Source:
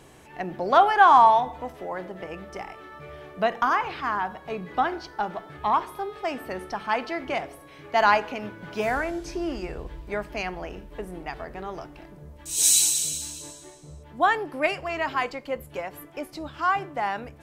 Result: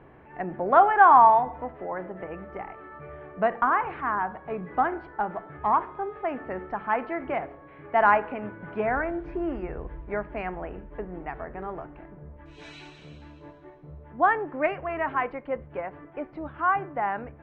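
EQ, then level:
low-pass filter 2,000 Hz 24 dB per octave
0.0 dB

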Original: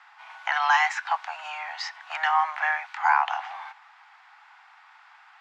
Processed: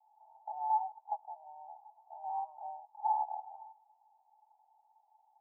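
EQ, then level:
Chebyshev low-pass with heavy ripple 900 Hz, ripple 6 dB
phaser with its sweep stopped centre 500 Hz, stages 6
−5.0 dB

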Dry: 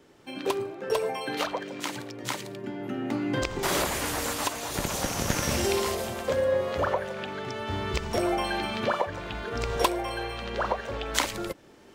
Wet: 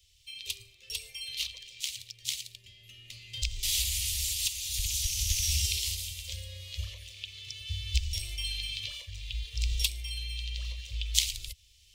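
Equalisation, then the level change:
inverse Chebyshev band-stop filter 150–1,600 Hz, stop band 40 dB
parametric band 13,000 Hz −3.5 dB 2.1 octaves
+5.5 dB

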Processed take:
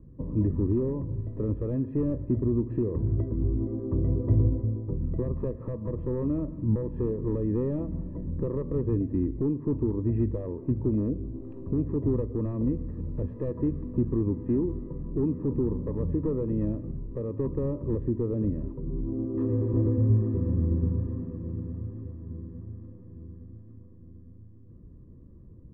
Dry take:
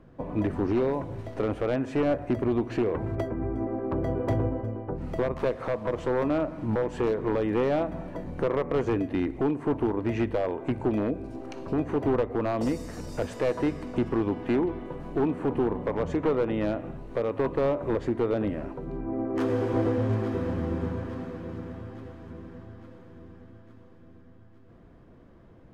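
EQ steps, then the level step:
moving average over 60 samples
high-frequency loss of the air 310 metres
parametric band 63 Hz +8 dB 2.4 octaves
+1.0 dB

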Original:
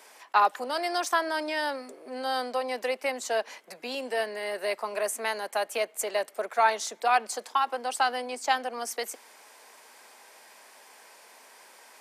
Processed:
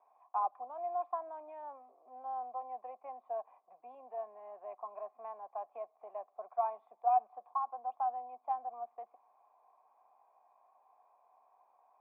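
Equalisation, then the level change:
formant resonators in series a
low-shelf EQ 160 Hz +5.5 dB
−2.5 dB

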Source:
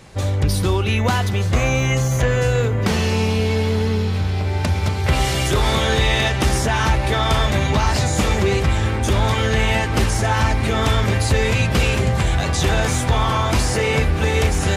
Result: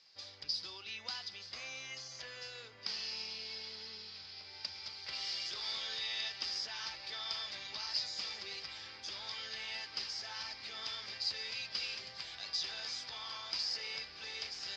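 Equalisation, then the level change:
resonant band-pass 4,900 Hz, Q 12
high-frequency loss of the air 180 metres
+7.5 dB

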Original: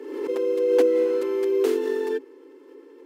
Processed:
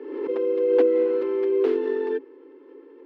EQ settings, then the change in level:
high-frequency loss of the air 340 metres
+1.0 dB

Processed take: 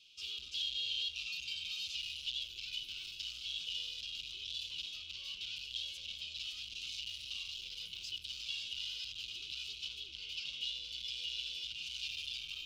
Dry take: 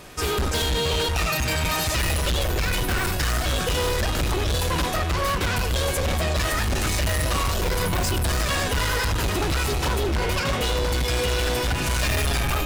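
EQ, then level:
elliptic high-pass filter 2,900 Hz, stop band 40 dB
high-frequency loss of the air 250 metres
high-shelf EQ 5,900 Hz −4 dB
−1.0 dB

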